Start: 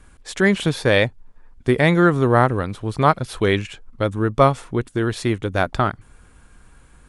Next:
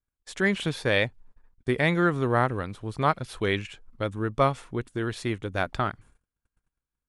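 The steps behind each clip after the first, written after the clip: dynamic EQ 2500 Hz, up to +4 dB, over -33 dBFS, Q 0.83; gate -42 dBFS, range -33 dB; gain -8.5 dB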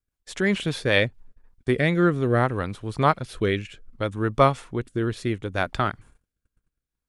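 rotary speaker horn 5 Hz, later 0.65 Hz, at 0.86; gain +5 dB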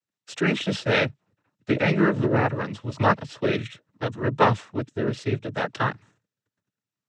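noise vocoder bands 12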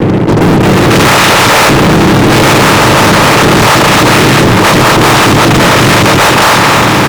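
per-bin compression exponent 0.2; three bands offset in time lows, mids, highs 0.63/0.67 s, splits 500/3500 Hz; fuzz box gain 34 dB, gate -42 dBFS; gain +9 dB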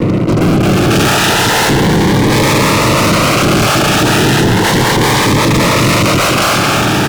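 cascading phaser rising 0.34 Hz; gain -3.5 dB

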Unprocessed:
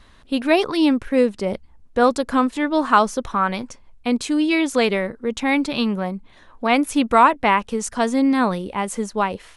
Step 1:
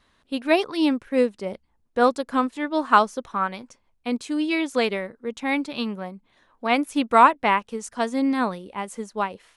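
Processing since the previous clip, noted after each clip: low shelf 85 Hz -12 dB; upward expander 1.5:1, over -29 dBFS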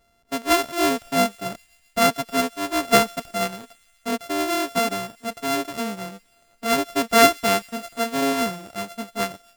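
sample sorter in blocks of 64 samples; thin delay 0.133 s, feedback 71%, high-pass 2500 Hz, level -24 dB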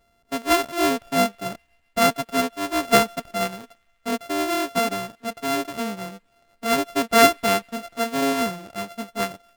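median filter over 9 samples

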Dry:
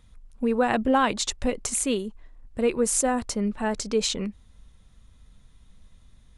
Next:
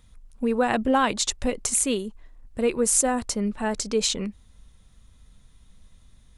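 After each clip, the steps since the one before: high shelf 5600 Hz +5.5 dB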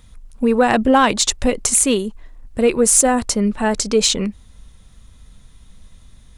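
soft clip -10 dBFS, distortion -26 dB; gain +8.5 dB

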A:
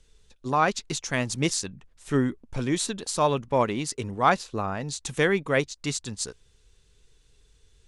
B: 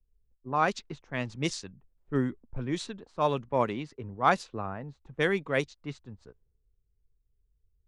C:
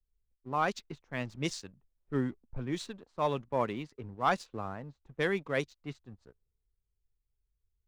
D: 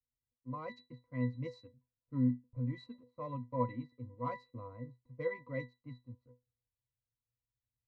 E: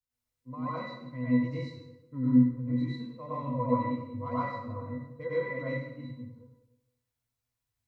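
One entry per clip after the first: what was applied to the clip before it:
low-pass opened by the level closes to 440 Hz, open at -18 dBFS; three-band expander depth 40%; gain -5 dB
sample leveller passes 1; gain -7 dB
octave resonator B, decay 0.19 s; gain +6.5 dB
plate-style reverb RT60 0.92 s, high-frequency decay 0.8×, pre-delay 85 ms, DRR -9.5 dB; gain -1.5 dB

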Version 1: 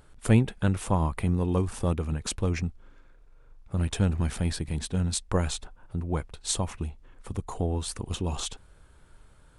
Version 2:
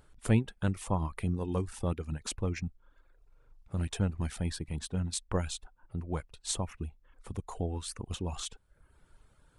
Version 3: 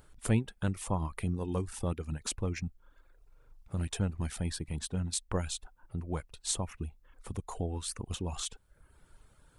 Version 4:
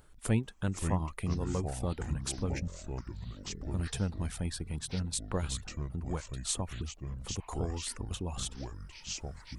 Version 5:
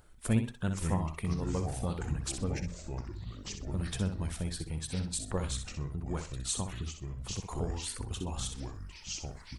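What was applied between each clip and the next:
reverb removal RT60 0.65 s; gain -5 dB
high shelf 7600 Hz +5.5 dB; in parallel at -3 dB: compressor, threshold -38 dBFS, peak gain reduction 17.5 dB; on the sum: gain -3 dB
echoes that change speed 0.435 s, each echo -5 st, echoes 3, each echo -6 dB; gain -1 dB
bin magnitudes rounded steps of 15 dB; feedback echo 63 ms, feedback 24%, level -8 dB

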